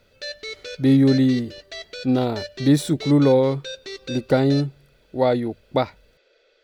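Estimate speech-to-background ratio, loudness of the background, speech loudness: 15.0 dB, -35.5 LUFS, -20.5 LUFS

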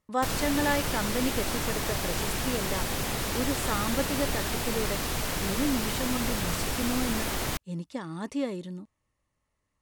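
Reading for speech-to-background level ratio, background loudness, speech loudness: -3.0 dB, -30.0 LUFS, -33.0 LUFS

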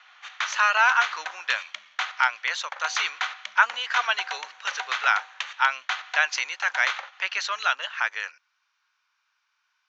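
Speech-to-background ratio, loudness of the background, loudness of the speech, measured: 7.5 dB, -32.5 LUFS, -25.0 LUFS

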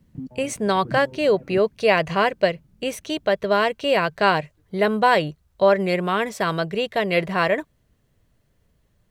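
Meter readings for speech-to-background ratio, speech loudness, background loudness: 17.5 dB, -21.5 LUFS, -39.0 LUFS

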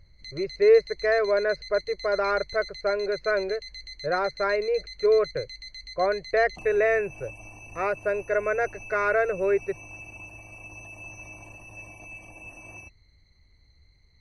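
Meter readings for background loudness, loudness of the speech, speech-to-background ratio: -41.0 LUFS, -25.5 LUFS, 15.5 dB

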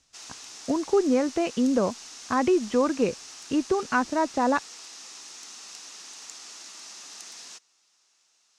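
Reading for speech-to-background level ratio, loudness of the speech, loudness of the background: 15.5 dB, -25.5 LUFS, -41.0 LUFS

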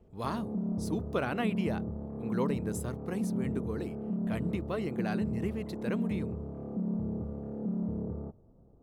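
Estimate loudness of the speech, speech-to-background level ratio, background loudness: -37.0 LUFS, -1.0 dB, -36.0 LUFS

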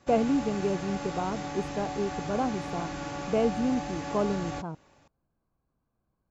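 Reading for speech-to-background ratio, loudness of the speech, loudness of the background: 6.0 dB, -30.5 LUFS, -36.5 LUFS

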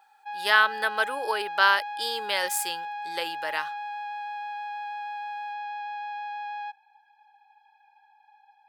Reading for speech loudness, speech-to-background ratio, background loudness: -25.5 LUFS, 9.5 dB, -35.0 LUFS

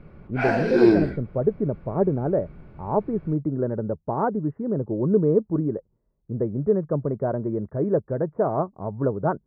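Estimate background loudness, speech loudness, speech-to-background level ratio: -21.0 LUFS, -25.5 LUFS, -4.5 dB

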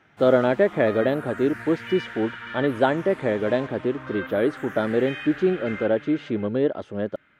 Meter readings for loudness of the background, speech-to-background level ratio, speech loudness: -37.0 LUFS, 13.0 dB, -24.0 LUFS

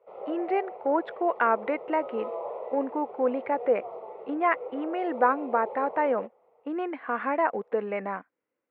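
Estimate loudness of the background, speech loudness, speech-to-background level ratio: -39.0 LUFS, -28.5 LUFS, 10.5 dB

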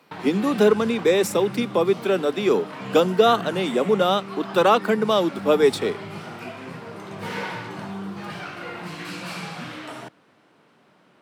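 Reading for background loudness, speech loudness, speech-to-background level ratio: -34.5 LUFS, -21.0 LUFS, 13.5 dB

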